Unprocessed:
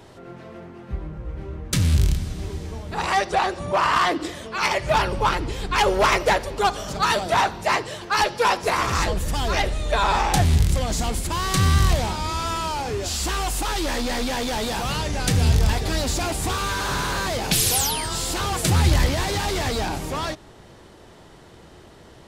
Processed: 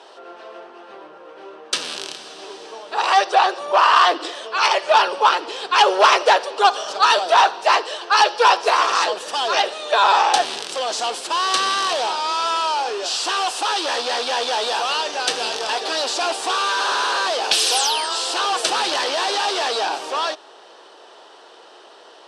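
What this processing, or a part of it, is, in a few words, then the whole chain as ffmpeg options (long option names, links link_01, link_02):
phone speaker on a table: -af "highpass=frequency=460:width=0.5412,highpass=frequency=460:width=1.3066,equalizer=frequency=570:width_type=q:width=4:gain=-3,equalizer=frequency=2100:width_type=q:width=4:gain=-10,equalizer=frequency=2900:width_type=q:width=4:gain=3,equalizer=frequency=7000:width_type=q:width=4:gain=-9,lowpass=frequency=7900:width=0.5412,lowpass=frequency=7900:width=1.3066,volume=7dB"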